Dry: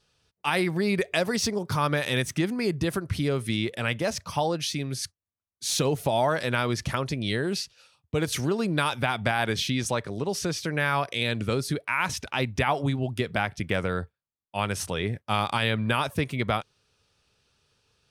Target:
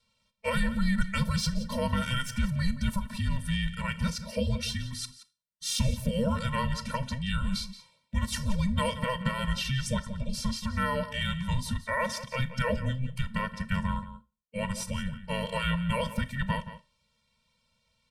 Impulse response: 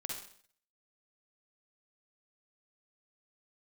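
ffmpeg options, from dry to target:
-filter_complex "[0:a]afreqshift=-390,asplit=2[a][b];[b]adelay=174.9,volume=-13dB,highshelf=f=4k:g=-3.94[c];[a][c]amix=inputs=2:normalize=0,asplit=2[d][e];[1:a]atrim=start_sample=2205,asetrate=79380,aresample=44100[f];[e][f]afir=irnorm=-1:irlink=0,volume=-5dB[g];[d][g]amix=inputs=2:normalize=0,afftfilt=real='re*eq(mod(floor(b*sr/1024/220),2),0)':imag='im*eq(mod(floor(b*sr/1024/220),2),0)':win_size=1024:overlap=0.75,volume=-2dB"

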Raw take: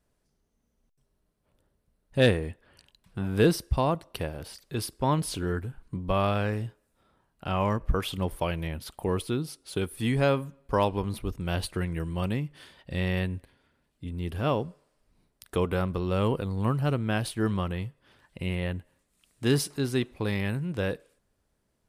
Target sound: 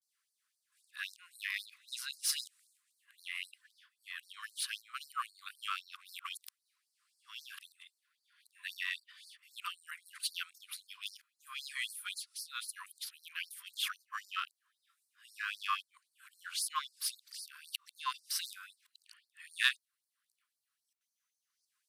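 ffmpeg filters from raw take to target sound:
-af "areverse,aeval=exprs='0.299*(cos(1*acos(clip(val(0)/0.299,-1,1)))-cos(1*PI/2))+0.00841*(cos(8*acos(clip(val(0)/0.299,-1,1)))-cos(8*PI/2))':c=same,afftfilt=real='re*gte(b*sr/1024,980*pow(4200/980,0.5+0.5*sin(2*PI*3.8*pts/sr)))':imag='im*gte(b*sr/1024,980*pow(4200/980,0.5+0.5*sin(2*PI*3.8*pts/sr)))':win_size=1024:overlap=0.75"

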